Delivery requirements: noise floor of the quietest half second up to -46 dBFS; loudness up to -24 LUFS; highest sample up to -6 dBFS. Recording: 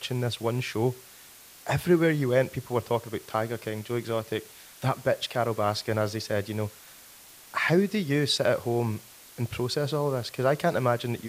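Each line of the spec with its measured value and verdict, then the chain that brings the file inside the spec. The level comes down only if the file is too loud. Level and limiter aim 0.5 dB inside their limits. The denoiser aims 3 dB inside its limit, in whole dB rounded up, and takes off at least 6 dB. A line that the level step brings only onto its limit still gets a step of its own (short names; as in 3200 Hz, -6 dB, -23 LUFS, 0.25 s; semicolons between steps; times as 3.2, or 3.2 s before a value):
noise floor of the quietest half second -50 dBFS: OK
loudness -27.5 LUFS: OK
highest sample -10.0 dBFS: OK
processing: none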